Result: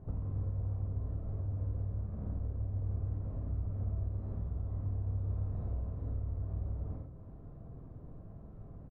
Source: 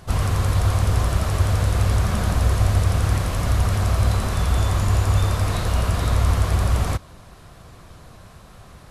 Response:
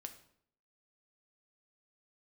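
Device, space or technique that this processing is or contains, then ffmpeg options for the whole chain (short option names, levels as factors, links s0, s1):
television next door: -filter_complex "[0:a]aecho=1:1:50|97:0.596|0.355,acompressor=threshold=0.0282:ratio=4,lowpass=420[s0];[1:a]atrim=start_sample=2205[s1];[s0][s1]afir=irnorm=-1:irlink=0"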